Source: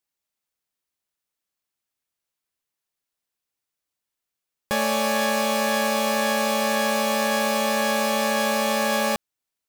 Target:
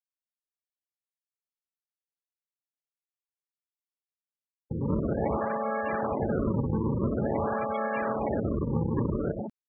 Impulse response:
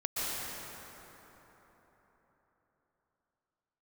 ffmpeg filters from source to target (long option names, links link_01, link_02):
-filter_complex "[1:a]atrim=start_sample=2205,afade=type=out:start_time=0.38:duration=0.01,atrim=end_sample=17199[link_01];[0:a][link_01]afir=irnorm=-1:irlink=0,acrossover=split=180[link_02][link_03];[link_03]acrusher=samples=37:mix=1:aa=0.000001:lfo=1:lforange=59.2:lforate=0.48[link_04];[link_02][link_04]amix=inputs=2:normalize=0,alimiter=limit=-15dB:level=0:latency=1:release=291,highpass=51,highshelf=frequency=2900:gain=-8,asplit=2[link_05][link_06];[link_06]adelay=203,lowpass=frequency=1400:poles=1,volume=-22dB,asplit=2[link_07][link_08];[link_08]adelay=203,lowpass=frequency=1400:poles=1,volume=0.47,asplit=2[link_09][link_10];[link_10]adelay=203,lowpass=frequency=1400:poles=1,volume=0.47[link_11];[link_05][link_07][link_09][link_11]amix=inputs=4:normalize=0,afftfilt=real='re*gte(hypot(re,im),0.0891)':imag='im*gte(hypot(re,im),0.0891)':win_size=1024:overlap=0.75,areverse,acompressor=mode=upward:threshold=-31dB:ratio=2.5,areverse,volume=-4dB"